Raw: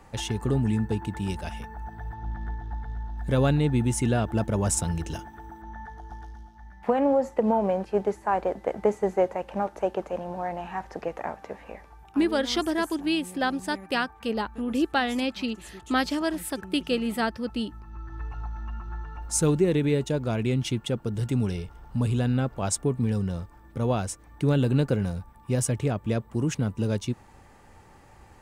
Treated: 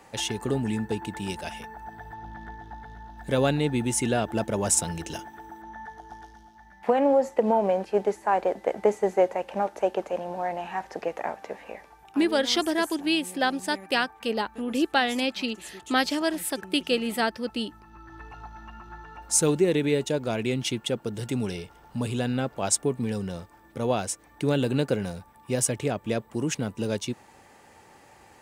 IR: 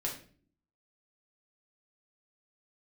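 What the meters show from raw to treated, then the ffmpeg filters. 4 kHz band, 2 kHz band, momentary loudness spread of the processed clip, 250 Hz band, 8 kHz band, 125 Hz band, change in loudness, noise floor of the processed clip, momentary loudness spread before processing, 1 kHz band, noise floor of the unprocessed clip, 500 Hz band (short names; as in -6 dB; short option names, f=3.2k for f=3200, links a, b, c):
+4.0 dB, +2.5 dB, 19 LU, -1.0 dB, +4.5 dB, -6.0 dB, +0.5 dB, -54 dBFS, 15 LU, +1.5 dB, -52 dBFS, +1.5 dB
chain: -af "highpass=f=420:p=1,equalizer=f=1.2k:t=o:w=0.82:g=-4.5,volume=4.5dB"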